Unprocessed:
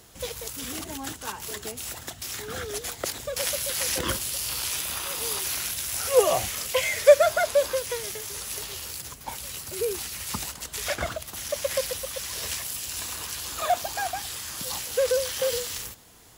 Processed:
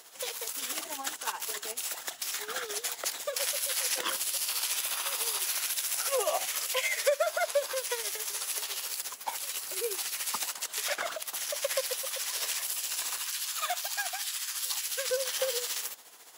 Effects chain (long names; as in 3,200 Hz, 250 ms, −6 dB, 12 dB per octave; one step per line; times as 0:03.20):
high-pass filter 610 Hz 12 dB per octave, from 0:13.18 1,400 Hz, from 0:15.10 560 Hz
downward compressor 2 to 1, threshold −31 dBFS, peak gain reduction 11 dB
amplitude tremolo 14 Hz, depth 53%
level +3.5 dB